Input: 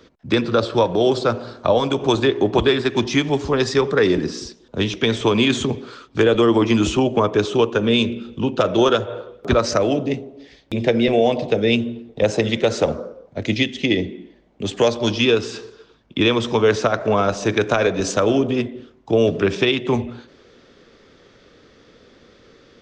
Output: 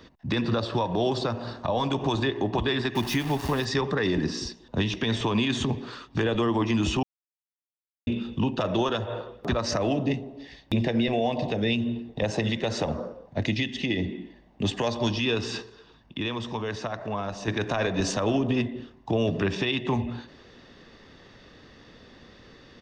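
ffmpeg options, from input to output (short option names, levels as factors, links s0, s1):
-filter_complex "[0:a]asettb=1/sr,asplit=3[s0][s1][s2];[s0]atrim=end=2.954[s3];[s1]atrim=start=2.95:end=3.65,asetpts=PTS-STARTPTS,afade=t=in:d=0.004:c=qsin,afade=t=out:st=0.696:d=0.004:c=qsin,aeval=exprs='val(0)*gte(abs(val(0)),0.0422)':c=same[s4];[s2]atrim=start=3.646[s5];[s3][s4]acrossfade=d=0.004:c1=hsin:c2=qsin[s6];[s6][s5]acrossfade=d=0.004:c1=qsin:c2=hsin,asettb=1/sr,asplit=3[s7][s8][s9];[s7]atrim=end=15.624[s10];[s8]atrim=start=15.62:end=17.48,asetpts=PTS-STARTPTS,afade=t=in:d=0.004:c=qsin,afade=t=out:st=1.856:d=0.004:c=qsin,acompressor=threshold=0.00355:ratio=1.5:attack=3.2:release=140:knee=1:detection=peak[s11];[s9]atrim=start=17.476[s12];[s10][s11]acrossfade=d=0.004:c1=hsin:c2=qsin[s13];[s13][s12]acrossfade=d=0.004:c1=qsin:c2=hsin,asplit=3[s14][s15][s16];[s14]atrim=end=7.03,asetpts=PTS-STARTPTS,afade=t=out:st=7.026:d=0.004:c=hsin[s17];[s15]atrim=start=7.03:end=8.07,asetpts=PTS-STARTPTS,volume=0[s18];[s16]atrim=start=8.07,asetpts=PTS-STARTPTS,afade=t=in:d=0.004:c=hsin[s19];[s17][s18][s19]concat=n=3:v=0:a=1,equalizer=f=7300:w=2.5:g=-6,aecho=1:1:1.1:0.44,alimiter=limit=0.158:level=0:latency=1:release=190"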